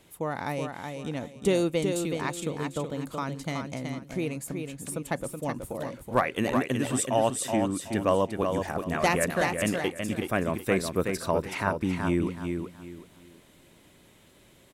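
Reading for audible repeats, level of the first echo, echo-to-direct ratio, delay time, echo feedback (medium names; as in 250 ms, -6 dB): 3, -5.5 dB, -5.0 dB, 374 ms, 27%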